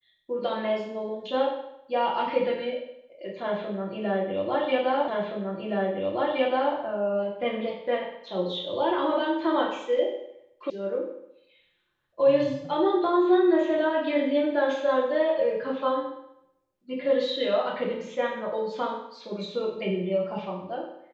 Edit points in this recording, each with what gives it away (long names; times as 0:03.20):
0:05.08: the same again, the last 1.67 s
0:10.70: cut off before it has died away